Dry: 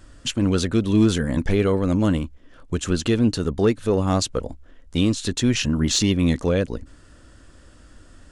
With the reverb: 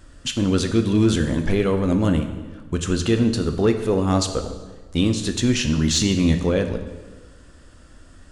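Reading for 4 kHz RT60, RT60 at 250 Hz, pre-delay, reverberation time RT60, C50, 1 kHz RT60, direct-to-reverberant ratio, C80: 1.1 s, 1.5 s, 9 ms, 1.4 s, 9.0 dB, 1.3 s, 6.5 dB, 10.5 dB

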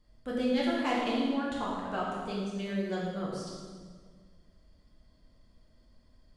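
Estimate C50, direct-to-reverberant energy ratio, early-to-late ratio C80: -0.5 dB, -6.5 dB, 1.5 dB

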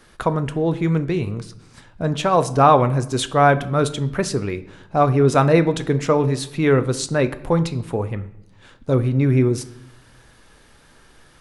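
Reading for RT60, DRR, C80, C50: 0.80 s, 11.0 dB, 19.0 dB, 16.0 dB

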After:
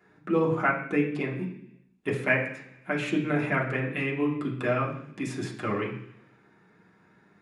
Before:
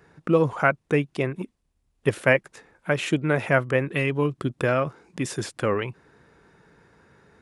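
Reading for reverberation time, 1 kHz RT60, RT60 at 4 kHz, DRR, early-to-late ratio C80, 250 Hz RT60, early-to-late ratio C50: 0.70 s, 0.70 s, 0.95 s, -3.5 dB, 10.5 dB, 0.90 s, 7.5 dB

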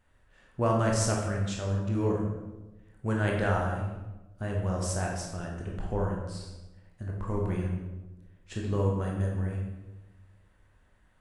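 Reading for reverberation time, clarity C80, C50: 1.1 s, 5.0 dB, 2.0 dB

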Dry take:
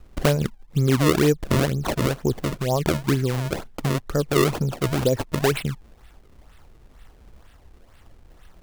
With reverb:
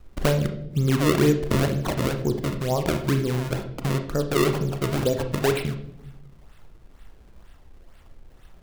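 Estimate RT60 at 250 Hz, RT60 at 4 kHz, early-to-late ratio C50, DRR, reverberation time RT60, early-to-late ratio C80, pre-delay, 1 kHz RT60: 1.3 s, 0.55 s, 10.0 dB, 6.5 dB, 0.80 s, 13.5 dB, 31 ms, 0.65 s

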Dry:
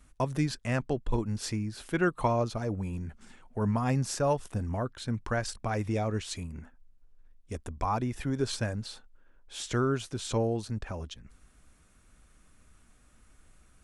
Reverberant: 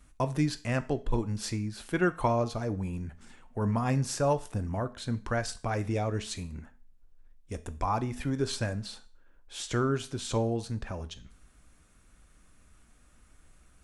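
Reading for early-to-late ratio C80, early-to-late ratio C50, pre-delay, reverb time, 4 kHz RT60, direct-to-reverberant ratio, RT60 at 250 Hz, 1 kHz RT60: 22.5 dB, 18.0 dB, 5 ms, 0.45 s, 0.40 s, 11.5 dB, 0.45 s, 0.40 s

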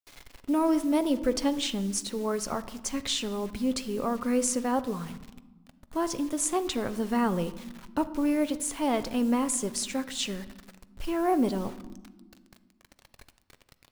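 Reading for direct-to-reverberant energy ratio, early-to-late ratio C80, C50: 11.5 dB, 17.5 dB, 16.0 dB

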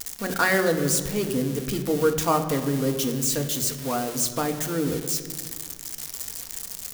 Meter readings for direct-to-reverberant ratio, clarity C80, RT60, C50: 5.0 dB, 10.5 dB, 1.8 s, 9.5 dB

